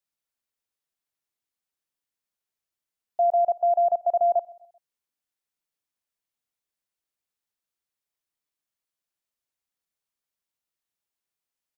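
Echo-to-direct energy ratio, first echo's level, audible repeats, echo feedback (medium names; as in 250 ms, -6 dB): -22.0 dB, -23.0 dB, 2, 44%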